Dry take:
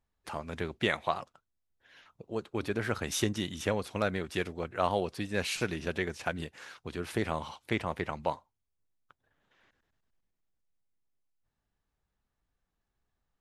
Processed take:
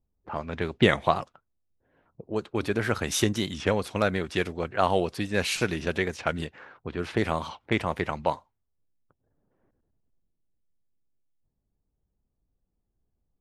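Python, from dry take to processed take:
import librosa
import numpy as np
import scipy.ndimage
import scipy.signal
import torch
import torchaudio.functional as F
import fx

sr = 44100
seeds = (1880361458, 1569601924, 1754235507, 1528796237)

y = fx.env_lowpass(x, sr, base_hz=460.0, full_db=-30.5)
y = fx.low_shelf(y, sr, hz=450.0, db=8.0, at=(0.82, 1.22))
y = fx.record_warp(y, sr, rpm=45.0, depth_cents=100.0)
y = y * 10.0 ** (5.5 / 20.0)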